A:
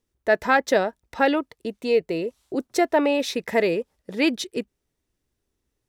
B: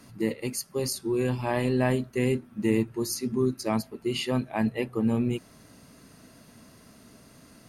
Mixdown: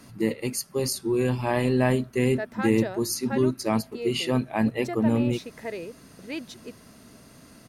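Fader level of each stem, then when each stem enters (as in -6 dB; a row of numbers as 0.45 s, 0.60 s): -13.5 dB, +2.5 dB; 2.10 s, 0.00 s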